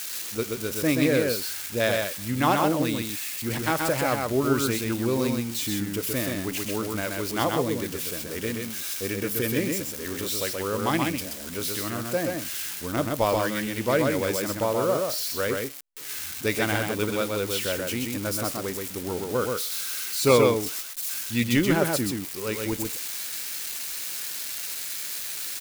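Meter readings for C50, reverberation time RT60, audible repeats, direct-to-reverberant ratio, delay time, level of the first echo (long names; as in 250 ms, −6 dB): no reverb audible, no reverb audible, 1, no reverb audible, 128 ms, −3.5 dB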